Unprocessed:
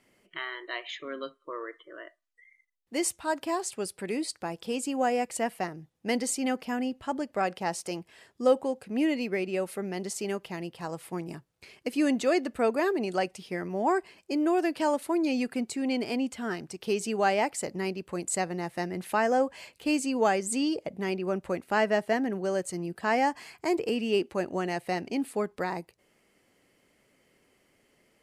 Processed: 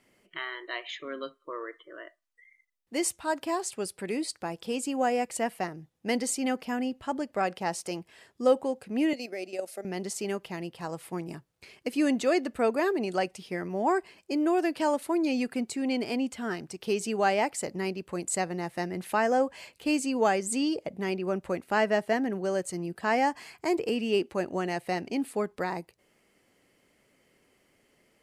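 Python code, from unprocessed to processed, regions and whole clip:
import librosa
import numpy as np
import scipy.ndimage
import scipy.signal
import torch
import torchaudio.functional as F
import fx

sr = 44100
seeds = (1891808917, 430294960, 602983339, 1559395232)

y = fx.chain(x, sr, fx.curve_eq(hz=(450.0, 660.0, 1000.0, 1500.0, 3400.0, 5300.0, 10000.0), db=(0, 13, -4, 2, 5, 14, 10)),
    fx.level_steps(step_db=10),
    fx.ladder_highpass(hz=210.0, resonance_pct=25), at=(9.13, 9.85))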